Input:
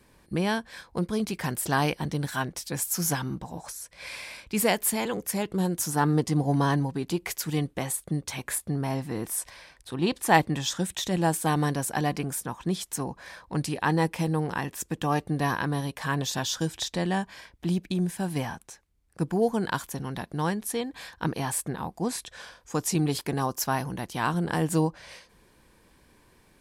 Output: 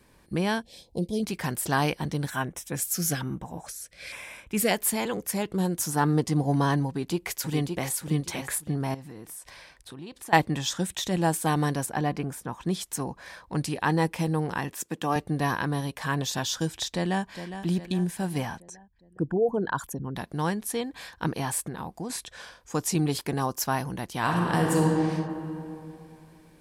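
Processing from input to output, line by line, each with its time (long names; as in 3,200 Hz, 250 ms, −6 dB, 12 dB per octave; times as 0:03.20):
0:00.62–0:01.23: Chebyshev band-stop filter 580–3,200 Hz
0:02.30–0:04.71: auto-filter notch square 1.1 Hz 950–4,500 Hz
0:06.87–0:07.90: delay throw 570 ms, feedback 20%, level −5.5 dB
0:08.94–0:10.33: downward compressor 4 to 1, threshold −40 dBFS
0:11.86–0:12.53: high-shelf EQ 3,300 Hz −10 dB
0:14.74–0:15.16: high-pass filter 180 Hz
0:16.92–0:17.37: delay throw 410 ms, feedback 55%, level −10.5 dB
0:18.60–0:20.16: spectral envelope exaggerated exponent 2
0:21.68–0:22.10: downward compressor 4 to 1, threshold −30 dBFS
0:24.18–0:24.86: thrown reverb, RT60 2.8 s, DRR −0.5 dB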